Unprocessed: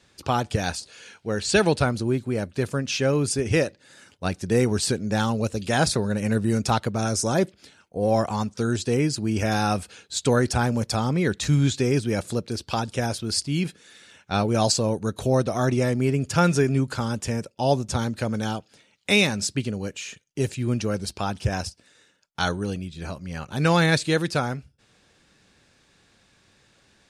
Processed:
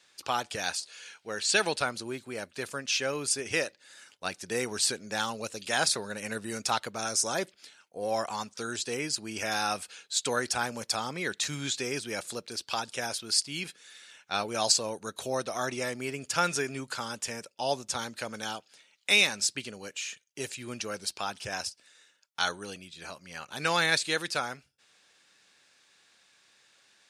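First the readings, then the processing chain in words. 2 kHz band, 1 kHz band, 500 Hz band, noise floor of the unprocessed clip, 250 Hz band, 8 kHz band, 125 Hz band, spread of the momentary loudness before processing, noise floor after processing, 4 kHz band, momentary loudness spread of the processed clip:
−2.0 dB, −5.0 dB, −9.5 dB, −62 dBFS, −15.0 dB, 0.0 dB, −20.5 dB, 10 LU, −67 dBFS, −0.5 dB, 13 LU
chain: high-pass filter 1,400 Hz 6 dB per octave

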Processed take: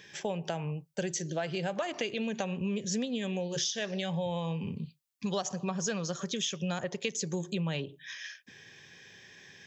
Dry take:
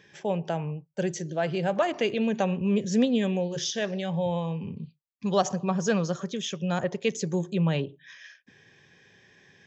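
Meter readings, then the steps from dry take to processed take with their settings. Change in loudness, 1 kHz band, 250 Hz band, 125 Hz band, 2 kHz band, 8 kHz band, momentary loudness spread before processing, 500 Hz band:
−6.0 dB, −7.5 dB, −7.0 dB, −6.0 dB, −3.5 dB, can't be measured, 10 LU, −7.5 dB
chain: high-shelf EQ 2,200 Hz +10 dB
downward compressor 6 to 1, threshold −30 dBFS, peak gain reduction 13.5 dB

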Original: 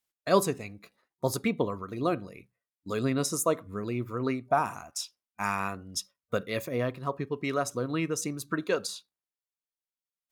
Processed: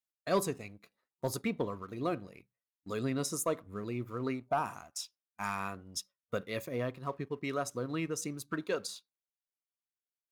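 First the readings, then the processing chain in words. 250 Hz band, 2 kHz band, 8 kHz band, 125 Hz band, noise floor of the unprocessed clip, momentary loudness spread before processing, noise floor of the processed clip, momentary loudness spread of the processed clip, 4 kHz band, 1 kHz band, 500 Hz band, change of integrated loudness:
−5.5 dB, −6.0 dB, −5.5 dB, −5.5 dB, below −85 dBFS, 9 LU, below −85 dBFS, 9 LU, −5.5 dB, −6.0 dB, −6.0 dB, −5.5 dB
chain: leveller curve on the samples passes 1
level −9 dB

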